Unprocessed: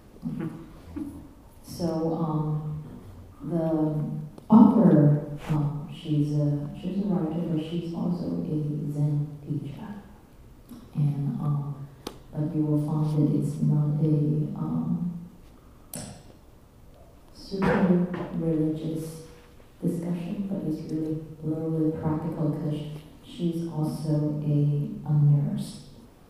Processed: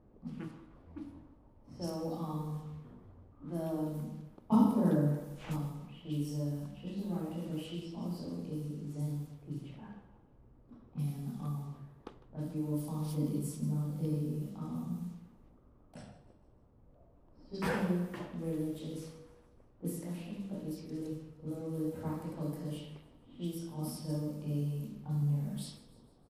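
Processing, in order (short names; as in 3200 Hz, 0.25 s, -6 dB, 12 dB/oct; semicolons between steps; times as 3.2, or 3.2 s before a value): low-pass opened by the level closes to 710 Hz, open at -23.5 dBFS; pre-emphasis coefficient 0.8; feedback echo 0.153 s, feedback 51%, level -18 dB; gain +3 dB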